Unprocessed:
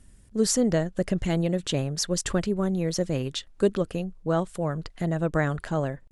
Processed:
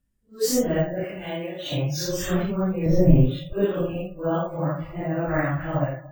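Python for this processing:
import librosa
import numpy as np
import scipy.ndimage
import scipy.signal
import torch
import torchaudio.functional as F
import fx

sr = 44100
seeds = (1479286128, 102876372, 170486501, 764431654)

y = fx.phase_scramble(x, sr, seeds[0], window_ms=200)
y = fx.high_shelf(y, sr, hz=6200.0, db=-5.0)
y = fx.echo_bbd(y, sr, ms=114, stages=2048, feedback_pct=81, wet_db=-19.5)
y = fx.noise_reduce_blind(y, sr, reduce_db=22)
y = fx.highpass(y, sr, hz=770.0, slope=6, at=(1.04, 1.72))
y = fx.tilt_eq(y, sr, slope=-4.0, at=(2.86, 3.53))
y = np.repeat(y[::2], 2)[:len(y)]
y = F.gain(torch.from_numpy(y), 2.5).numpy()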